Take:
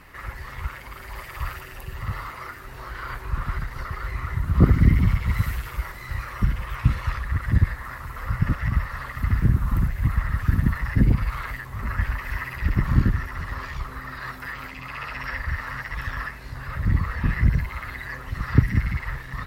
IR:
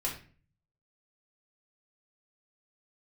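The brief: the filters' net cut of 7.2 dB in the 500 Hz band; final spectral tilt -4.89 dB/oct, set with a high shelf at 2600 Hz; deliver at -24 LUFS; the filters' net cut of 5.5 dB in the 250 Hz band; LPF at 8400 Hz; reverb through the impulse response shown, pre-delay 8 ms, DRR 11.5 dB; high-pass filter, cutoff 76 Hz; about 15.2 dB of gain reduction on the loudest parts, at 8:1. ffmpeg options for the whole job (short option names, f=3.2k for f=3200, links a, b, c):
-filter_complex "[0:a]highpass=76,lowpass=8.4k,equalizer=f=250:t=o:g=-7.5,equalizer=f=500:t=o:g=-6.5,highshelf=f=2.6k:g=-5,acompressor=threshold=-30dB:ratio=8,asplit=2[a][b];[1:a]atrim=start_sample=2205,adelay=8[c];[b][c]afir=irnorm=-1:irlink=0,volume=-15.5dB[d];[a][d]amix=inputs=2:normalize=0,volume=12dB"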